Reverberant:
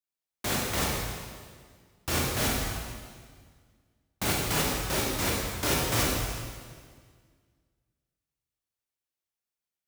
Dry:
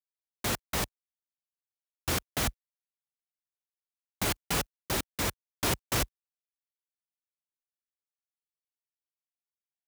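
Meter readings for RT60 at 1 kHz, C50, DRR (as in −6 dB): 1.7 s, −0.5 dB, −4.0 dB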